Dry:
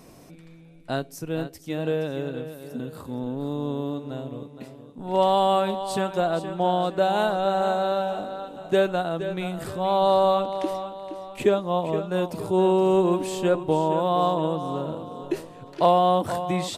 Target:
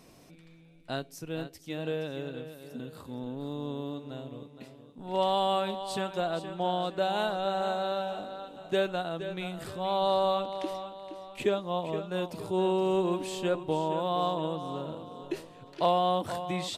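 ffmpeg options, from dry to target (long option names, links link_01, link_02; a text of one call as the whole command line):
ffmpeg -i in.wav -af "equalizer=frequency=3400:width=0.76:gain=5.5,volume=-7.5dB" out.wav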